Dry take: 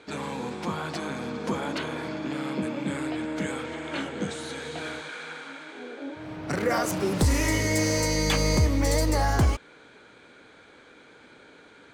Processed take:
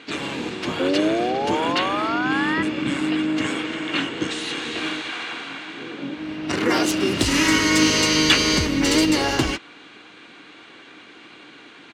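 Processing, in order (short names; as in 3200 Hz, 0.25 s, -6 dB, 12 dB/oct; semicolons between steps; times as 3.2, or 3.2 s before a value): weighting filter D; painted sound rise, 0.79–2.63, 520–2000 Hz -26 dBFS; harmoniser -12 st -6 dB, -7 st -6 dB, -3 st -8 dB; small resonant body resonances 310/2800 Hz, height 11 dB, ringing for 35 ms; gain -1.5 dB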